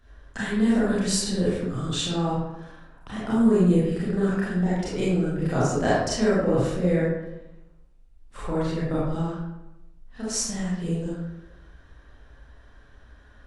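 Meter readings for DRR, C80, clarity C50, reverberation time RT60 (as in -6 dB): -9.0 dB, 1.5 dB, -2.5 dB, 0.95 s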